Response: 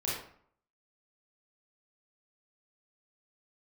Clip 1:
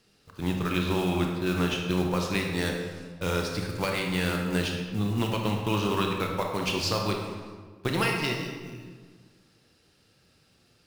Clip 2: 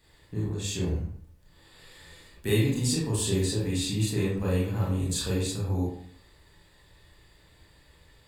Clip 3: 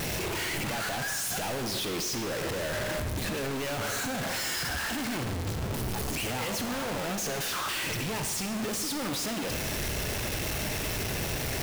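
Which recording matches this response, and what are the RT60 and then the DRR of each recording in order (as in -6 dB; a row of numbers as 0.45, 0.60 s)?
2; 1.6, 0.60, 1.2 s; 1.0, -6.5, 6.5 dB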